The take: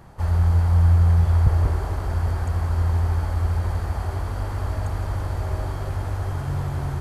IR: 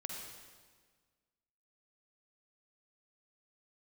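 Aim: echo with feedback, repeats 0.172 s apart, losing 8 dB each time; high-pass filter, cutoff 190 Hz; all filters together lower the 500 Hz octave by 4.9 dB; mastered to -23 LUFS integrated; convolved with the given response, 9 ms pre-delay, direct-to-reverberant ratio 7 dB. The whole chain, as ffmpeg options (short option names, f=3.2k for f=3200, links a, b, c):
-filter_complex "[0:a]highpass=190,equalizer=f=500:t=o:g=-6.5,aecho=1:1:172|344|516|688|860:0.398|0.159|0.0637|0.0255|0.0102,asplit=2[a][b];[1:a]atrim=start_sample=2205,adelay=9[c];[b][c]afir=irnorm=-1:irlink=0,volume=-6dB[d];[a][d]amix=inputs=2:normalize=0,volume=11dB"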